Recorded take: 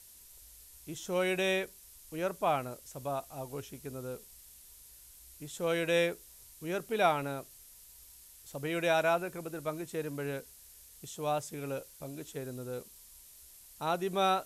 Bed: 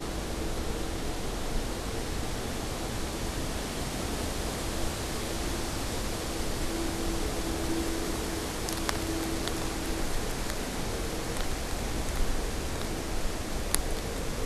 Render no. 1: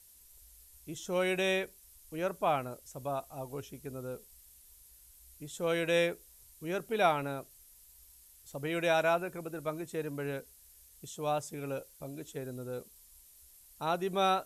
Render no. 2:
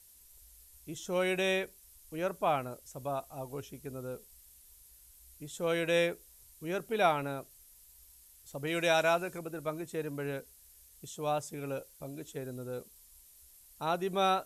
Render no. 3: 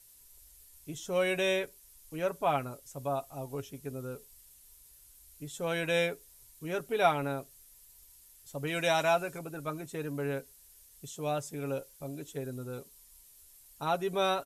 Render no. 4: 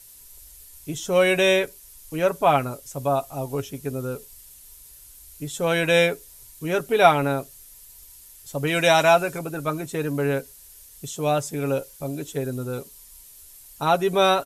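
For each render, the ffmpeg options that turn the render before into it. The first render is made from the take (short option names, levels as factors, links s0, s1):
-af "afftdn=nr=6:nf=-56"
-filter_complex "[0:a]asettb=1/sr,asplit=3[s0][s1][s2];[s0]atrim=end=8.674[s3];[s1]atrim=start=8.67:end=9.39,asetpts=PTS-STARTPTS,afade=t=in:d=0.004:c=qsin,afade=t=out:st=0.716:d=0.004:c=qsin,equalizer=f=5900:t=o:w=2:g=6.5[s4];[s2]atrim=start=9.386[s5];[s3][s4]acrossfade=d=0.004:c1=hsin:c2=qsin[s6];[s6][s5]acrossfade=d=0.004:c1=qsin:c2=hsin"
-af "aecho=1:1:7.2:0.48"
-af "volume=3.35"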